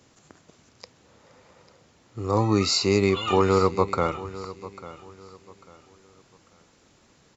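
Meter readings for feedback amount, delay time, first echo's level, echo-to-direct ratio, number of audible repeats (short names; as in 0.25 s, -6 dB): 30%, 0.846 s, -16.5 dB, -16.0 dB, 2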